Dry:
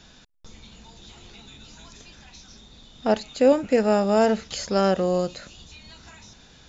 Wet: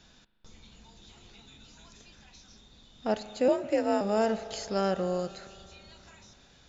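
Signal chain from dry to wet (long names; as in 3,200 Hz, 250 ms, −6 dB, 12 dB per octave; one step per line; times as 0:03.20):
spring reverb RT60 3 s, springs 38 ms, chirp 25 ms, DRR 13 dB
0:03.48–0:04.01: frequency shifter +50 Hz
level −7.5 dB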